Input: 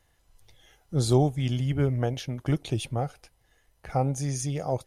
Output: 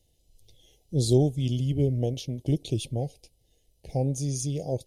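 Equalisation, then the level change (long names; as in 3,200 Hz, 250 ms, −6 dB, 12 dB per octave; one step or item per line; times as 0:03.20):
Chebyshev band-stop filter 500–3,500 Hz, order 2
+1.0 dB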